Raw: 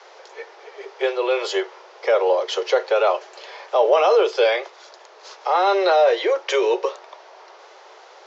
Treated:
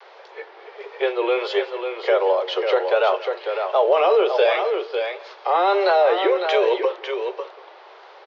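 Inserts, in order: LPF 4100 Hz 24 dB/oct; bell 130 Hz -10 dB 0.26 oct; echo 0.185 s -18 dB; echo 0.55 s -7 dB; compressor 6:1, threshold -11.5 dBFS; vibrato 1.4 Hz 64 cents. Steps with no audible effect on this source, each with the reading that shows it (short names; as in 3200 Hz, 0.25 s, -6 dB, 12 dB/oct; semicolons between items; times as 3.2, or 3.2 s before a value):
bell 130 Hz: input band starts at 300 Hz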